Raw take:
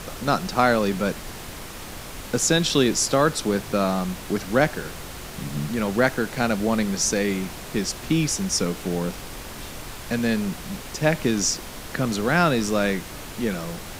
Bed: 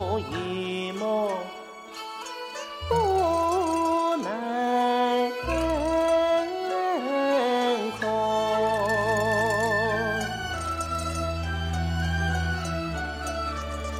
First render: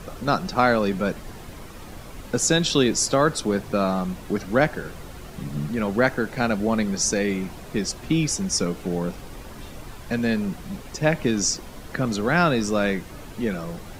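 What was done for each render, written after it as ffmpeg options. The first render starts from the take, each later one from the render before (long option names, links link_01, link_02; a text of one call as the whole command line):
ffmpeg -i in.wav -af "afftdn=noise_reduction=9:noise_floor=-37" out.wav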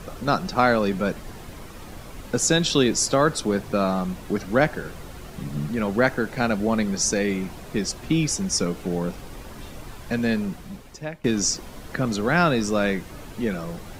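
ffmpeg -i in.wav -filter_complex "[0:a]asplit=2[link_01][link_02];[link_01]atrim=end=11.24,asetpts=PTS-STARTPTS,afade=type=out:start_time=10.34:duration=0.9:silence=0.0841395[link_03];[link_02]atrim=start=11.24,asetpts=PTS-STARTPTS,afade=type=in:duration=0.004:curve=hsin:silence=0.0841395[link_04];[link_03][link_04]concat=n=2:v=0:a=1" out.wav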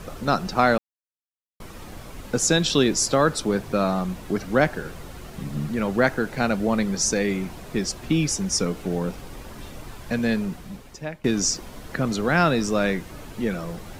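ffmpeg -i in.wav -filter_complex "[0:a]asplit=3[link_01][link_02][link_03];[link_01]atrim=end=0.78,asetpts=PTS-STARTPTS,afade=type=out:start_time=0.776:duration=0.004:curve=hsin[link_04];[link_02]atrim=start=0.78:end=1.6,asetpts=PTS-STARTPTS,volume=0[link_05];[link_03]atrim=start=1.6,asetpts=PTS-STARTPTS,afade=type=in:duration=0.004:curve=hsin[link_06];[link_04][link_05][link_06]concat=n=3:v=0:a=1" out.wav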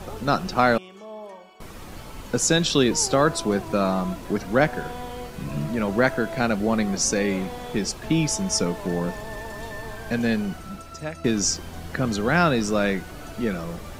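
ffmpeg -i in.wav -i bed.wav -filter_complex "[1:a]volume=-13dB[link_01];[0:a][link_01]amix=inputs=2:normalize=0" out.wav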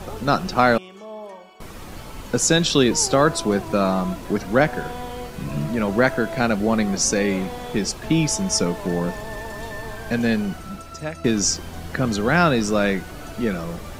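ffmpeg -i in.wav -af "volume=2.5dB,alimiter=limit=-3dB:level=0:latency=1" out.wav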